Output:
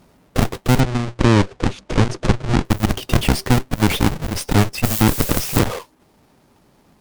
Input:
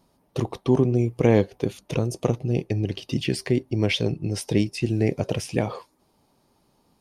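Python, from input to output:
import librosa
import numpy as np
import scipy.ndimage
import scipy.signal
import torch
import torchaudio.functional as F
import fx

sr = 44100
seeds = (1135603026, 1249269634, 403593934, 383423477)

y = fx.halfwave_hold(x, sr)
y = fx.rider(y, sr, range_db=3, speed_s=0.5)
y = fx.dmg_noise_colour(y, sr, seeds[0], colour='blue', level_db=-30.0, at=(4.83, 5.58), fade=0.02)
y = fx.cheby_harmonics(y, sr, harmonics=(6, 7), levels_db=(-11, -9), full_scale_db=-4.5)
y = fx.bessel_lowpass(y, sr, hz=6000.0, order=8, at=(0.8, 2.65))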